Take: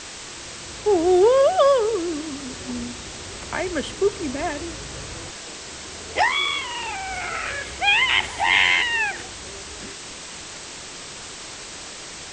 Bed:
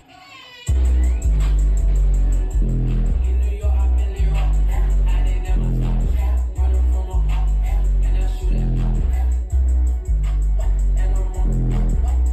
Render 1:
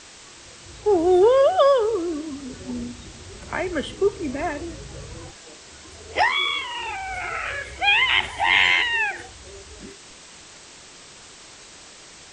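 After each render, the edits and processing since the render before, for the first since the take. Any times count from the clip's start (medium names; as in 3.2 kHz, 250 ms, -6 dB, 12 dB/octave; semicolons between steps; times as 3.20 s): noise print and reduce 8 dB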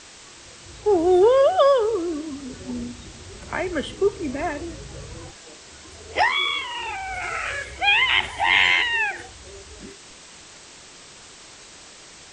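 7.22–7.65 s: treble shelf 5.3 kHz +6.5 dB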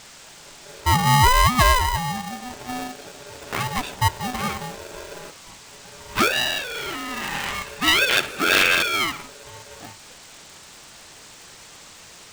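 polarity switched at an audio rate 500 Hz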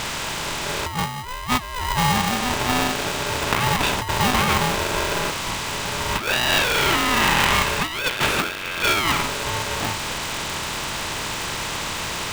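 spectral levelling over time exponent 0.6; compressor with a negative ratio -20 dBFS, ratio -0.5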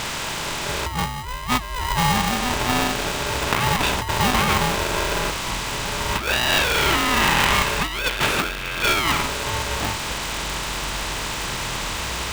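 add bed -18.5 dB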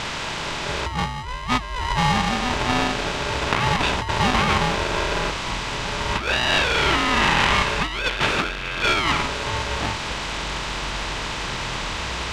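low-pass 5.4 kHz 12 dB/octave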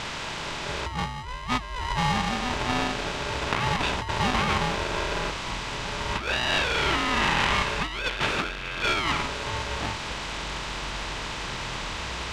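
trim -5 dB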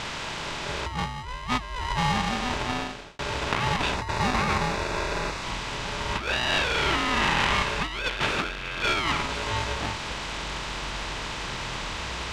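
2.55–3.19 s: fade out; 3.94–5.43 s: band-stop 3.1 kHz, Q 5.4; 9.27–9.73 s: doubling 19 ms -3.5 dB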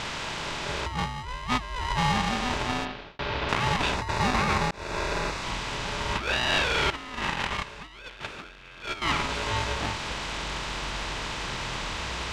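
2.85–3.49 s: low-pass 4.4 kHz 24 dB/octave; 4.71–5.13 s: fade in equal-power; 6.90–9.02 s: gate -23 dBFS, range -14 dB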